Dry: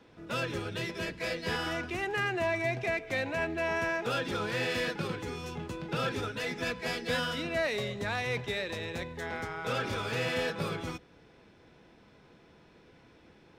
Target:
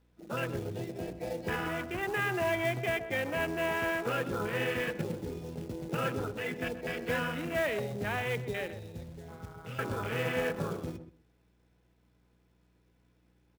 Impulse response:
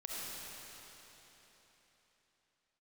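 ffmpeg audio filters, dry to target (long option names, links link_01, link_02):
-filter_complex "[0:a]afwtdn=0.02,asettb=1/sr,asplit=3[link_01][link_02][link_03];[link_01]atrim=end=8.704[link_04];[link_02]atrim=start=8.7:end=9.79,asetpts=PTS-STARTPTS,afade=type=in:duration=0.004:curve=qsin,afade=type=out:start_time=1.086:duration=0.004:curve=qsin,acrossover=split=190|3000[link_05][link_06][link_07];[link_06]acompressor=threshold=-50dB:ratio=5[link_08];[link_05][link_08][link_07]amix=inputs=3:normalize=0[link_09];[link_03]atrim=start=9.786[link_10];[link_04][link_09]acrossfade=duration=0.004:curve1=hsin:curve2=qsin[link_11];[link_11][link_10]acrossfade=duration=0.004:curve1=qsin:curve2=hsin,aeval=exprs='val(0)+0.000447*(sin(2*PI*60*n/s)+sin(2*PI*2*60*n/s)/2+sin(2*PI*3*60*n/s)/3+sin(2*PI*4*60*n/s)/4+sin(2*PI*5*60*n/s)/5)':channel_layout=same,acrusher=bits=4:mode=log:mix=0:aa=0.000001,asplit=2[link_12][link_13];[link_13]adelay=127,lowpass=frequency=1000:poles=1,volume=-9dB,asplit=2[link_14][link_15];[link_15]adelay=127,lowpass=frequency=1000:poles=1,volume=0.16[link_16];[link_14][link_16]amix=inputs=2:normalize=0[link_17];[link_12][link_17]amix=inputs=2:normalize=0"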